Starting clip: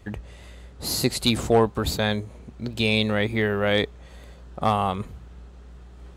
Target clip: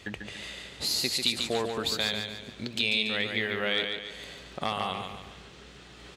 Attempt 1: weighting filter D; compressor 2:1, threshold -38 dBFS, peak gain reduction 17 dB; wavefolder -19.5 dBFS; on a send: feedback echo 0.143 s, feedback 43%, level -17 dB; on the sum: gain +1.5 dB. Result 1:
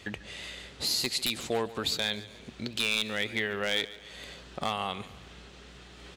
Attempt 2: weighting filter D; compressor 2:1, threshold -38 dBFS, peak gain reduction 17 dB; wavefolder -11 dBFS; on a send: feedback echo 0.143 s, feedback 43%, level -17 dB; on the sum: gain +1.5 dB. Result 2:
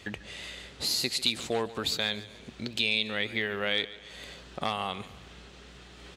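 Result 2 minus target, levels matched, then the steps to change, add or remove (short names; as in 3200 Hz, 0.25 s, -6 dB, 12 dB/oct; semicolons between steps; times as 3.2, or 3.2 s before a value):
echo-to-direct -11.5 dB
change: feedback echo 0.143 s, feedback 43%, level -5.5 dB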